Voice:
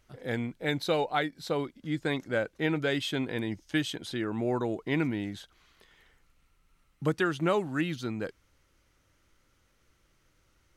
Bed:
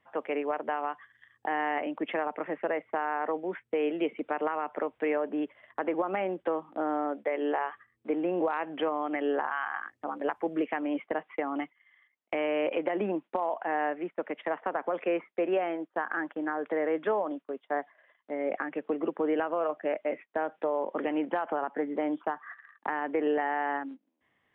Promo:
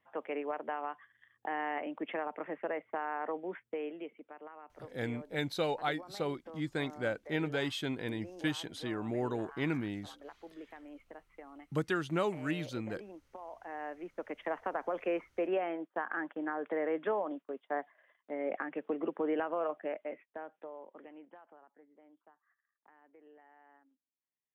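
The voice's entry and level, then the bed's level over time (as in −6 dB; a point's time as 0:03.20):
4.70 s, −5.0 dB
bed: 0:03.61 −6 dB
0:04.30 −19.5 dB
0:13.23 −19.5 dB
0:14.43 −4.5 dB
0:19.67 −4.5 dB
0:21.91 −32 dB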